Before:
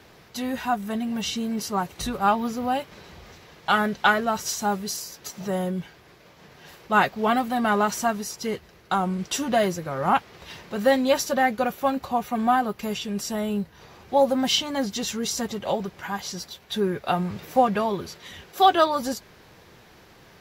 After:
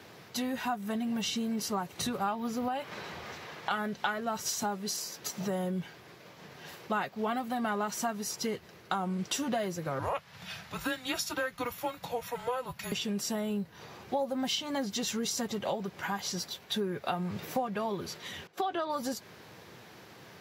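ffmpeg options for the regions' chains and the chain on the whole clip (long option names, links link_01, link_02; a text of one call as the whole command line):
ffmpeg -i in.wav -filter_complex "[0:a]asettb=1/sr,asplit=3[link_01][link_02][link_03];[link_01]atrim=end=2.684[link_04];[link_02]atrim=start=2.68:end=3.71,asetpts=PTS-STARTPTS,afade=type=in:duration=0.004:curve=qsin,afade=type=out:start_time=1.026:duration=0.004:curve=qsin,equalizer=frequency=1300:width_type=o:width=2.9:gain=7,acompressor=threshold=-31dB:ratio=2:attack=3.2:release=140:knee=1:detection=peak[link_05];[link_03]atrim=start=3.706[link_06];[link_04][link_05]acrossfade=duration=0.004:curve1=hsin:curve2=qsin[link_07];[link_07][link_06]acrossfade=duration=0.004:curve1=qsin:curve2=hsin,asettb=1/sr,asplit=3[link_08][link_09][link_10];[link_08]atrim=end=4.634[link_11];[link_09]atrim=start=4.63:end=5.15,asetpts=PTS-STARTPTS,afade=type=in:duration=0.004:curve=qsin,afade=type=out:start_time=0.516:duration=0.004:curve=qsin,highpass=150,highshelf=frequency=10000:gain=-6[link_12];[link_10]atrim=start=5.146[link_13];[link_11][link_12]acrossfade=duration=0.004:curve1=hsin:curve2=qsin[link_14];[link_14][link_13]acrossfade=duration=0.004:curve1=qsin:curve2=hsin,asettb=1/sr,asplit=3[link_15][link_16][link_17];[link_15]atrim=end=9.994[link_18];[link_16]atrim=start=9.99:end=12.92,asetpts=PTS-STARTPTS,afade=type=in:duration=0.004:curve=qsin,afade=type=out:start_time=2.926:duration=0.004:curve=qsin,equalizer=frequency=520:width=1.2:gain=-12,bandreject=frequency=580:width=19,afreqshift=-250[link_19];[link_17]atrim=start=12.916[link_20];[link_18][link_19]acrossfade=duration=0.004:curve1=hsin:curve2=qsin[link_21];[link_21][link_20]acrossfade=duration=0.004:curve1=qsin:curve2=hsin,asettb=1/sr,asplit=3[link_22][link_23][link_24];[link_22]atrim=end=18.474[link_25];[link_23]atrim=start=18.47:end=18.9,asetpts=PTS-STARTPTS,afade=type=in:duration=0.004:curve=qsin,afade=type=out:start_time=0.426:duration=0.004:curve=qsin,agate=range=-14dB:threshold=-40dB:ratio=16:release=100:detection=peak,aemphasis=mode=reproduction:type=50kf,acompressor=threshold=-22dB:ratio=2.5:attack=3.2:release=140:knee=1:detection=peak[link_26];[link_24]atrim=start=18.896[link_27];[link_25][link_26]acrossfade=duration=0.004:curve1=hsin:curve2=qsin[link_28];[link_28][link_27]acrossfade=duration=0.004:curve1=qsin:curve2=hsin,highpass=frequency=93:width=0.5412,highpass=frequency=93:width=1.3066,acompressor=threshold=-30dB:ratio=5" out.wav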